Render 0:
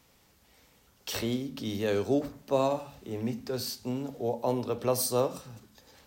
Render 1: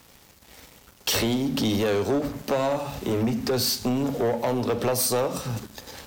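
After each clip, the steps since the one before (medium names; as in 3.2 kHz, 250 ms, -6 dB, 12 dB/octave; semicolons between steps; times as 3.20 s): compression 5:1, threshold -35 dBFS, peak gain reduction 13 dB; waveshaping leveller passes 3; trim +6 dB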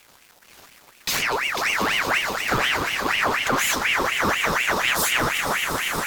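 echo with a slow build-up 118 ms, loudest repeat 8, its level -12 dB; ring modulator with a swept carrier 1.6 kHz, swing 60%, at 4.1 Hz; trim +3 dB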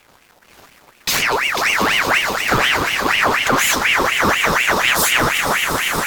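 tape noise reduction on one side only decoder only; trim +6 dB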